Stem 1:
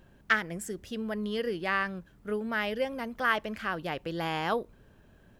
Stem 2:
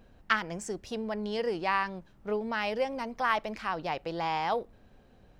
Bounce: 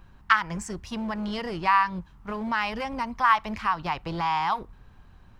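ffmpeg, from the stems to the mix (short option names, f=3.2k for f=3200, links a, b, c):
-filter_complex "[0:a]aemphasis=mode=reproduction:type=riaa,agate=range=-7dB:threshold=-32dB:ratio=16:detection=peak,asoftclip=type=hard:threshold=-28dB,volume=-0.5dB[a];[1:a]lowshelf=f=680:t=q:w=3:g=-13.5,volume=2.5dB,asplit=2[b][c];[c]apad=whole_len=237896[d];[a][d]sidechaincompress=threshold=-35dB:ratio=8:attack=44:release=118[e];[e][b]amix=inputs=2:normalize=0"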